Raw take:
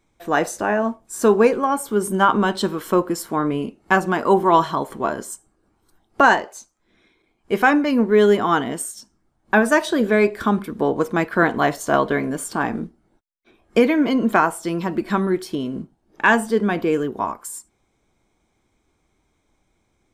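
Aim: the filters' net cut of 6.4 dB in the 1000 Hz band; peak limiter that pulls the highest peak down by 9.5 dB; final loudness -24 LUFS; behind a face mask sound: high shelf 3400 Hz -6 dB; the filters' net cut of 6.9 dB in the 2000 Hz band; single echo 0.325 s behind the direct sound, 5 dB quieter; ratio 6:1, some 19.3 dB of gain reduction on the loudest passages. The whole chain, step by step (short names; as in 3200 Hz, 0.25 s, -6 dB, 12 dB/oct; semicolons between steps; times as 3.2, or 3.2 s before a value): bell 1000 Hz -6.5 dB; bell 2000 Hz -5 dB; compressor 6:1, threshold -33 dBFS; limiter -27 dBFS; high shelf 3400 Hz -6 dB; echo 0.325 s -5 dB; gain +13.5 dB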